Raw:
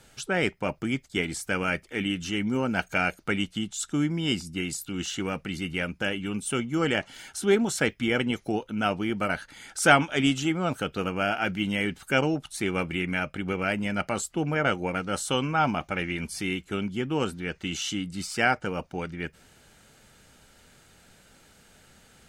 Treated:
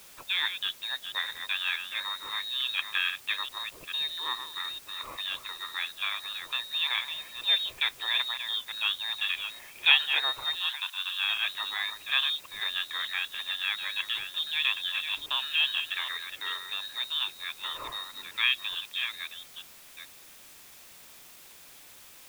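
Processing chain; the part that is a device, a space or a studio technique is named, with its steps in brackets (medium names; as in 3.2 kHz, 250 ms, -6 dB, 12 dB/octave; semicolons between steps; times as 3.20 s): chunks repeated in reverse 436 ms, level -8 dB; scrambled radio voice (band-pass 330–2800 Hz; frequency inversion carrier 4 kHz; white noise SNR 19 dB); 10.59–11.22 s: Chebyshev high-pass 900 Hz, order 3; trim -2 dB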